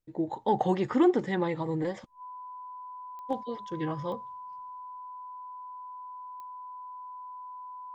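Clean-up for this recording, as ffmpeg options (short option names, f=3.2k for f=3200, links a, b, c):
-af "adeclick=t=4,bandreject=f=1k:w=30"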